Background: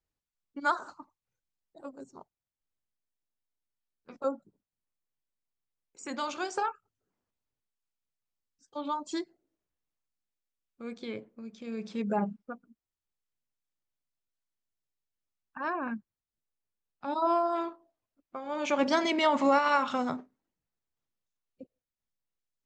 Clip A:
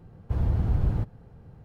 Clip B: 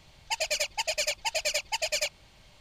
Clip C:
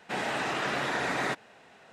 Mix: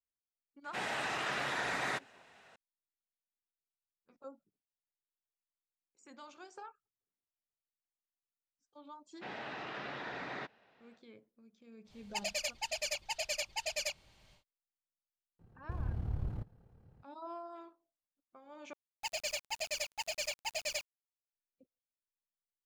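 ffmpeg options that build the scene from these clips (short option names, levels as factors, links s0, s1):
-filter_complex "[3:a]asplit=2[s0][s1];[2:a]asplit=2[s2][s3];[0:a]volume=0.119[s4];[s0]equalizer=f=270:w=0.51:g=-6.5[s5];[s1]lowpass=f=4900:w=0.5412,lowpass=f=4900:w=1.3066[s6];[1:a]tremolo=f=36:d=0.571[s7];[s3]acrusher=bits=6:mix=0:aa=0.000001[s8];[s4]asplit=2[s9][s10];[s9]atrim=end=18.734[s11];[s8]atrim=end=2.6,asetpts=PTS-STARTPTS,volume=0.355[s12];[s10]atrim=start=21.326[s13];[s5]atrim=end=1.92,asetpts=PTS-STARTPTS,volume=0.631,afade=t=in:d=0.004:c=hsin,afade=t=out:st=1.916:d=0.004:c=hsin,adelay=640[s14];[s6]atrim=end=1.92,asetpts=PTS-STARTPTS,volume=0.237,afade=t=in:d=0.1,afade=t=out:st=1.82:d=0.1,adelay=9120[s15];[s2]atrim=end=2.6,asetpts=PTS-STARTPTS,volume=0.398,afade=t=in:d=0.1,afade=t=out:st=2.5:d=0.1,adelay=11840[s16];[s7]atrim=end=1.64,asetpts=PTS-STARTPTS,volume=0.299,afade=t=in:d=0.004:c=hsin,afade=t=out:st=1.636:d=0.004:c=hsin,adelay=15390[s17];[s11][s12]acrossfade=d=0.004:c1=hsin:c2=hsin[s18];[s18][s13]acrossfade=d=0.004:c1=hsin:c2=hsin[s19];[s19][s14][s15][s16][s17]amix=inputs=5:normalize=0"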